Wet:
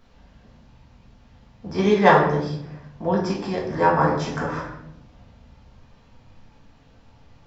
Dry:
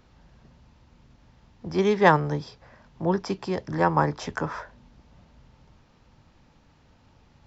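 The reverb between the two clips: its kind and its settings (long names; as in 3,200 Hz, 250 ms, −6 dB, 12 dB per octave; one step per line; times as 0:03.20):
rectangular room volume 170 cubic metres, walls mixed, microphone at 1.6 metres
level −2 dB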